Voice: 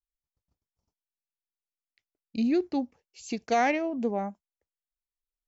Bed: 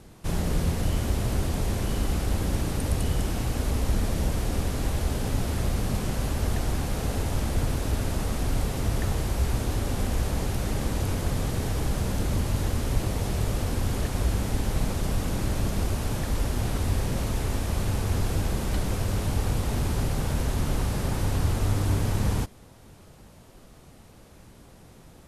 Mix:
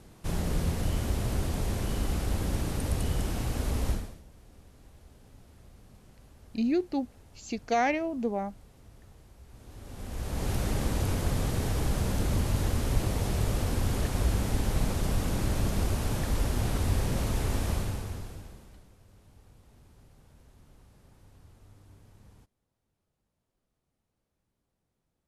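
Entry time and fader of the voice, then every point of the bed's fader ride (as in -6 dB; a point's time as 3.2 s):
4.20 s, -1.5 dB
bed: 3.91 s -3.5 dB
4.23 s -27.5 dB
9.45 s -27.5 dB
10.51 s -1.5 dB
17.71 s -1.5 dB
18.94 s -31 dB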